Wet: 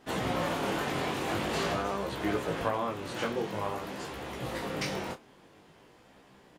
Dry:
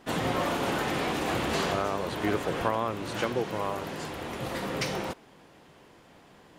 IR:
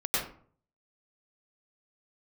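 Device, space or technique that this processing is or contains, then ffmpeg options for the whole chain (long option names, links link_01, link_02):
double-tracked vocal: -filter_complex "[0:a]asplit=2[link_01][link_02];[link_02]adelay=30,volume=-11.5dB[link_03];[link_01][link_03]amix=inputs=2:normalize=0,flanger=delay=15:depth=7.3:speed=0.48"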